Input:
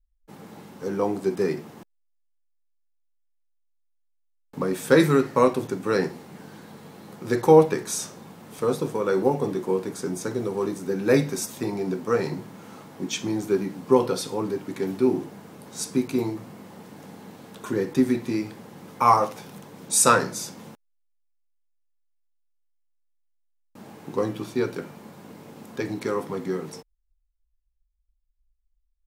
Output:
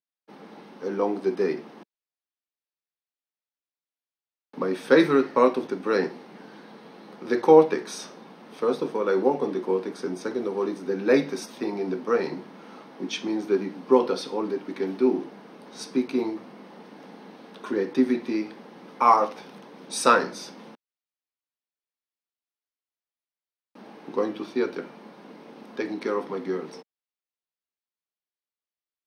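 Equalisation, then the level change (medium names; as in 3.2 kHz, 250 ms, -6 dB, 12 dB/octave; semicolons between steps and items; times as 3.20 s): Savitzky-Golay filter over 15 samples; high-pass 210 Hz 24 dB/octave; 0.0 dB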